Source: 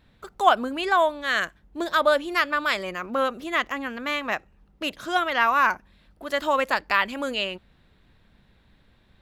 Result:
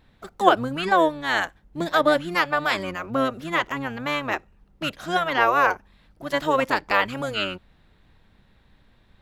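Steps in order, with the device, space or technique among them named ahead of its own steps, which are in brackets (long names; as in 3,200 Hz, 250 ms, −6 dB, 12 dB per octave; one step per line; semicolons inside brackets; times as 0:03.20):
octave pedal (pitch-shifted copies added −12 semitones −5 dB)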